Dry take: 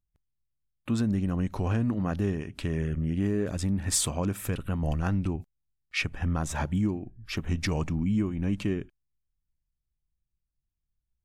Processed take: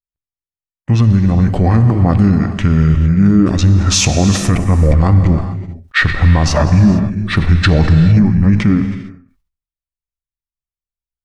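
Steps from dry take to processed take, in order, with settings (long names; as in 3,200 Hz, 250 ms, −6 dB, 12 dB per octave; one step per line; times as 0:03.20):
formants moved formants −5 semitones
high-shelf EQ 5,700 Hz −8.5 dB
reverb whose tail is shaped and stops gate 480 ms flat, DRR 8.5 dB
downward expander −35 dBFS
speech leveller 2 s
boost into a limiter +19 dB
level that may fall only so fast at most 110 dB per second
level −1 dB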